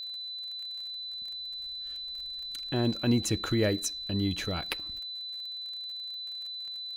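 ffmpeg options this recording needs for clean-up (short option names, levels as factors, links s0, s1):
-af "adeclick=t=4,bandreject=f=4000:w=30"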